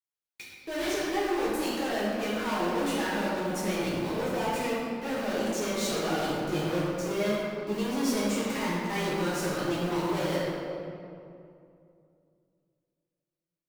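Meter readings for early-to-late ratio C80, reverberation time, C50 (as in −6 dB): −0.5 dB, 2.5 s, −2.5 dB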